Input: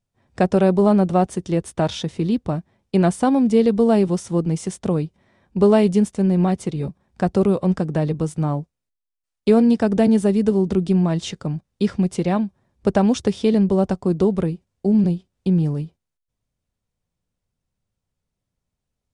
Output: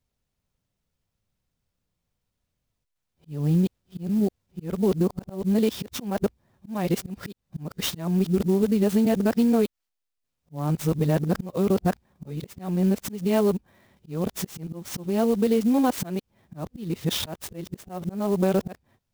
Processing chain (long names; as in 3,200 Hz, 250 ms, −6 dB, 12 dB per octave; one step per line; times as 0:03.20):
played backwards from end to start
high-shelf EQ 2,800 Hz +5.5 dB
downward compressor 10 to 1, threshold −17 dBFS, peak gain reduction 8.5 dB
volume swells 263 ms
converter with an unsteady clock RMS 0.026 ms